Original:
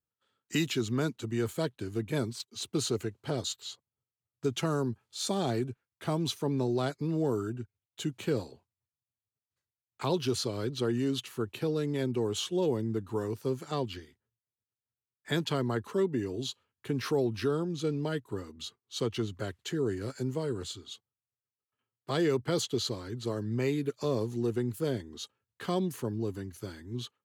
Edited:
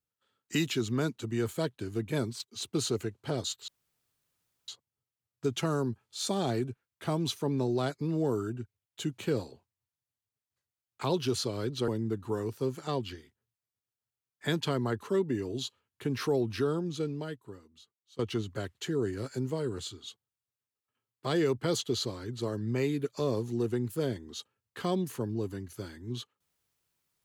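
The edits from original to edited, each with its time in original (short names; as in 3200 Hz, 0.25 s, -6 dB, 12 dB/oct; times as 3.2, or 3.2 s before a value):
3.68 insert room tone 1.00 s
10.88–12.72 cut
17.71–19.03 fade out quadratic, to -21.5 dB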